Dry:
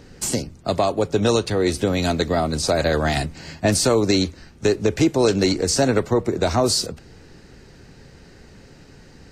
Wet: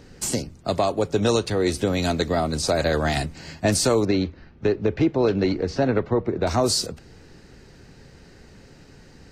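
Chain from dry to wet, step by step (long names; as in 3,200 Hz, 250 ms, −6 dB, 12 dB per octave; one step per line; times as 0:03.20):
0:04.05–0:06.47: high-frequency loss of the air 290 metres
level −2 dB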